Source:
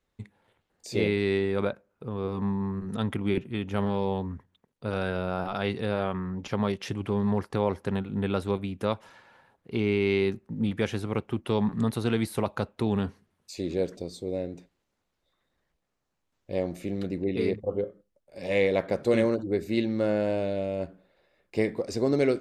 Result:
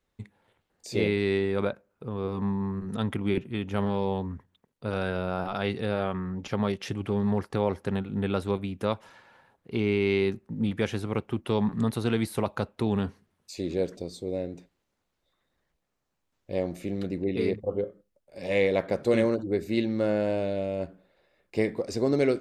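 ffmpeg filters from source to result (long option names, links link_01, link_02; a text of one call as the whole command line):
ffmpeg -i in.wav -filter_complex "[0:a]asettb=1/sr,asplit=3[link_01][link_02][link_03];[link_01]atrim=end=5.664[link_04];[link_02]atrim=start=5.66:end=8.34,asetpts=PTS-STARTPTS,afade=type=in:duration=0.004:curve=qsin,afade=type=out:start_time=2.676:duration=0.004:curve=qsin,bandreject=frequency=1000:width=15[link_05];[link_03]atrim=start=8.336[link_06];[link_04][link_05]acrossfade=duration=0.004:curve1=hsin:curve2=qsin[link_07];[link_07][link_06]acrossfade=duration=0.004:curve1=qsin:curve2=hsin" out.wav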